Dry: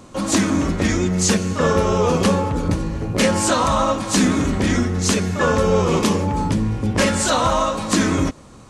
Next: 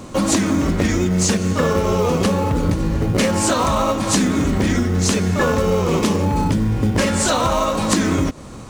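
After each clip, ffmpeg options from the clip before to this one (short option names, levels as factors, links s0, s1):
-filter_complex "[0:a]asplit=2[s0][s1];[s1]acrusher=samples=26:mix=1:aa=0.000001,volume=0.266[s2];[s0][s2]amix=inputs=2:normalize=0,acompressor=threshold=0.0891:ratio=6,volume=2.11"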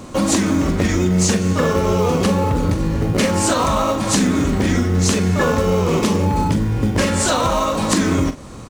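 -filter_complex "[0:a]asplit=2[s0][s1];[s1]adelay=44,volume=0.299[s2];[s0][s2]amix=inputs=2:normalize=0"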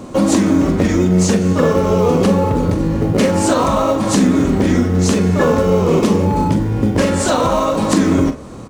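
-af "equalizer=f=360:w=0.36:g=8,bandreject=f=72.39:t=h:w=4,bandreject=f=144.78:t=h:w=4,bandreject=f=217.17:t=h:w=4,bandreject=f=289.56:t=h:w=4,bandreject=f=361.95:t=h:w=4,bandreject=f=434.34:t=h:w=4,bandreject=f=506.73:t=h:w=4,bandreject=f=579.12:t=h:w=4,bandreject=f=651.51:t=h:w=4,bandreject=f=723.9:t=h:w=4,bandreject=f=796.29:t=h:w=4,bandreject=f=868.68:t=h:w=4,bandreject=f=941.07:t=h:w=4,bandreject=f=1013.46:t=h:w=4,bandreject=f=1085.85:t=h:w=4,bandreject=f=1158.24:t=h:w=4,bandreject=f=1230.63:t=h:w=4,bandreject=f=1303.02:t=h:w=4,bandreject=f=1375.41:t=h:w=4,bandreject=f=1447.8:t=h:w=4,bandreject=f=1520.19:t=h:w=4,bandreject=f=1592.58:t=h:w=4,bandreject=f=1664.97:t=h:w=4,bandreject=f=1737.36:t=h:w=4,bandreject=f=1809.75:t=h:w=4,bandreject=f=1882.14:t=h:w=4,bandreject=f=1954.53:t=h:w=4,bandreject=f=2026.92:t=h:w=4,bandreject=f=2099.31:t=h:w=4,bandreject=f=2171.7:t=h:w=4,bandreject=f=2244.09:t=h:w=4,bandreject=f=2316.48:t=h:w=4,bandreject=f=2388.87:t=h:w=4,bandreject=f=2461.26:t=h:w=4,bandreject=f=2533.65:t=h:w=4,bandreject=f=2606.04:t=h:w=4,volume=0.75"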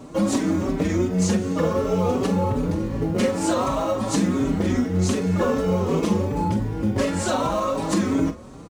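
-filter_complex "[0:a]asplit=2[s0][s1];[s1]adelay=4.8,afreqshift=2.7[s2];[s0][s2]amix=inputs=2:normalize=1,volume=0.562"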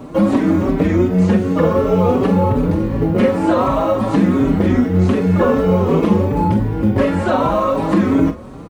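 -filter_complex "[0:a]acrossover=split=3100[s0][s1];[s1]acompressor=threshold=0.00708:ratio=4:attack=1:release=60[s2];[s0][s2]amix=inputs=2:normalize=0,equalizer=f=6700:t=o:w=1.4:g=-11,volume=2.37"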